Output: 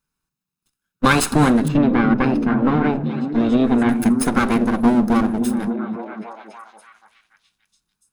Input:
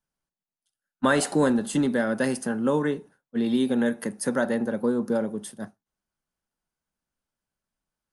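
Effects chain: minimum comb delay 0.78 ms; 1.68–3.89 air absorption 300 m; delay with a stepping band-pass 0.286 s, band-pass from 160 Hz, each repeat 0.7 oct, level -2 dB; gain +8.5 dB

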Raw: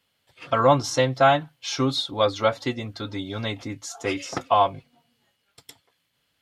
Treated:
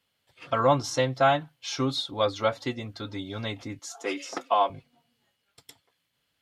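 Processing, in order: 3.79–4.7 HPF 240 Hz 24 dB/oct; gain -4 dB

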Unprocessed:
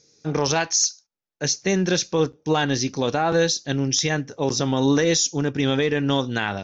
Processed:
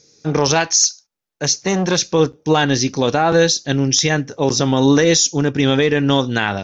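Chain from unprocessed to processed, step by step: 0.6–2.01 core saturation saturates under 760 Hz; gain +6 dB

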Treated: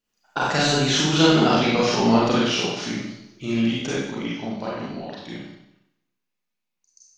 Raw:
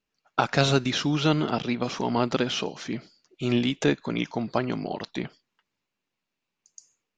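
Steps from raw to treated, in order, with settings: Doppler pass-by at 1.58, 19 m/s, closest 9 m; high shelf 7600 Hz +9.5 dB; in parallel at +2.5 dB: compressor, threshold -38 dBFS, peak gain reduction 18.5 dB; on the sum: Schroeder reverb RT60 0.82 s, combs from 31 ms, DRR -6 dB; gain +1 dB

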